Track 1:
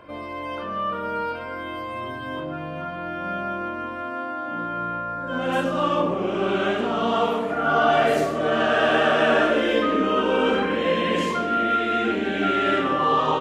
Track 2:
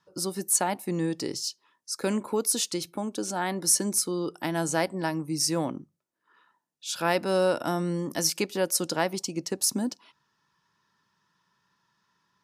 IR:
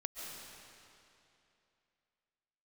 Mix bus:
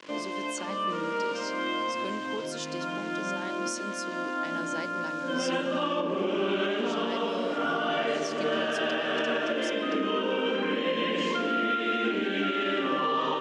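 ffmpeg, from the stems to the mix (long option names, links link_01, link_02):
-filter_complex "[0:a]volume=1dB,asplit=2[link_01][link_02];[link_02]volume=-7.5dB[link_03];[1:a]volume=-9dB,asplit=2[link_04][link_05];[link_05]apad=whole_len=591031[link_06];[link_01][link_06]sidechaincompress=threshold=-42dB:ratio=8:attack=37:release=340[link_07];[2:a]atrim=start_sample=2205[link_08];[link_03][link_08]afir=irnorm=-1:irlink=0[link_09];[link_07][link_04][link_09]amix=inputs=3:normalize=0,aeval=exprs='val(0)*gte(abs(val(0)),0.01)':channel_layout=same,highpass=frequency=190:width=0.5412,highpass=frequency=190:width=1.3066,equalizer=frequency=740:width_type=q:width=4:gain=-8,equalizer=frequency=1300:width_type=q:width=4:gain=-4,equalizer=frequency=3000:width_type=q:width=4:gain=4,lowpass=frequency=6900:width=0.5412,lowpass=frequency=6900:width=1.3066,alimiter=limit=-18.5dB:level=0:latency=1:release=442"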